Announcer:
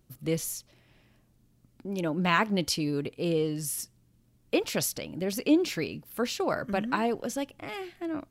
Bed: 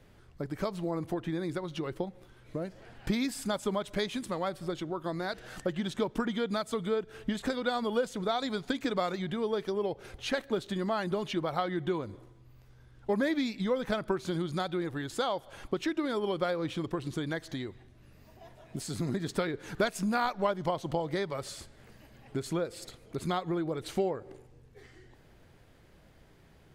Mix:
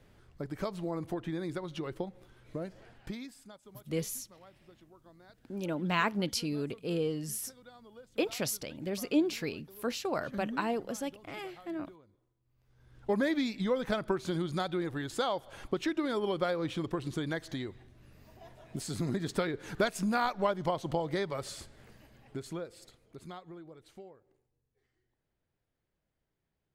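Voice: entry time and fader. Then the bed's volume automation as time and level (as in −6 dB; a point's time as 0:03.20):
3.65 s, −4.5 dB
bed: 0:02.80 −2.5 dB
0:03.64 −23.5 dB
0:12.40 −23.5 dB
0:12.95 −0.5 dB
0:21.78 −0.5 dB
0:24.59 −25.5 dB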